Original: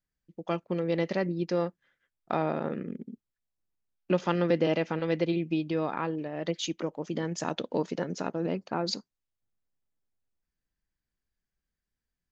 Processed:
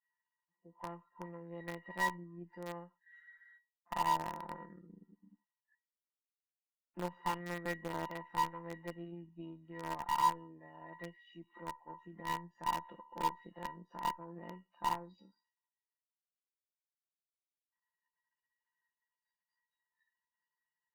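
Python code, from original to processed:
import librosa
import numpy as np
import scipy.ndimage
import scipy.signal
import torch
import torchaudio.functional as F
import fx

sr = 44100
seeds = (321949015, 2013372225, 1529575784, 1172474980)

p1 = x + 0.5 * 10.0 ** (-27.5 / 20.0) * np.diff(np.sign(x), prepend=np.sign(x[:1]))
p2 = fx.highpass(p1, sr, hz=160.0, slope=6)
p3 = fx.noise_reduce_blind(p2, sr, reduce_db=23)
p4 = scipy.signal.sosfilt(scipy.signal.butter(4, 1600.0, 'lowpass', fs=sr, output='sos'), p3)
p5 = fx.comb_fb(p4, sr, f0_hz=960.0, decay_s=0.15, harmonics='all', damping=0.0, mix_pct=100)
p6 = fx.cheby_harmonics(p5, sr, harmonics=(3, 6, 7), levels_db=(-40, -26, -31), full_scale_db=-35.5)
p7 = fx.stretch_grains(p6, sr, factor=1.7, grain_ms=28.0)
p8 = fx.quant_dither(p7, sr, seeds[0], bits=8, dither='none')
p9 = p7 + (p8 * 10.0 ** (-7.5 / 20.0))
y = p9 * 10.0 ** (14.0 / 20.0)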